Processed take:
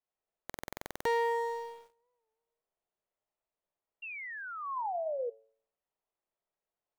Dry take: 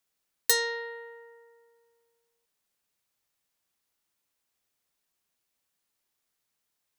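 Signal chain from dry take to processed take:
running median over 9 samples
convolution reverb RT60 0.65 s, pre-delay 25 ms, DRR −3 dB
brickwall limiter −25 dBFS, peak gain reduction 9 dB
low-shelf EQ 260 Hz +4 dB
leveller curve on the samples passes 5
sound drawn into the spectrogram fall, 0:04.02–0:05.30, 460–2,800 Hz −36 dBFS
flat-topped bell 620 Hz +8 dB
hum removal 111.3 Hz, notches 9
buffer that repeats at 0:00.45, samples 2,048, times 12
wow of a warped record 45 rpm, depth 100 cents
level −6 dB

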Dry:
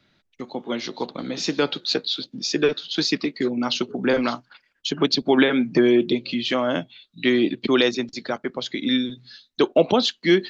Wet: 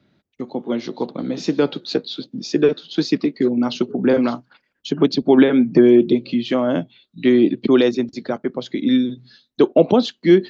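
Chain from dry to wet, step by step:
high-pass filter 140 Hz 6 dB per octave
tilt shelving filter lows +7.5 dB, about 760 Hz
level +1.5 dB

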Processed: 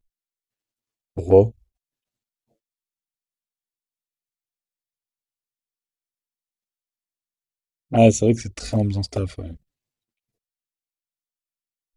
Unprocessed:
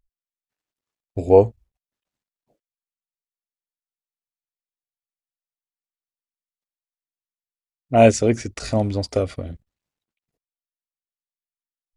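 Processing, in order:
parametric band 1,100 Hz −6.5 dB 2.2 octaves
flanger swept by the level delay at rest 8.9 ms, full sweep at −15.5 dBFS
level +3 dB

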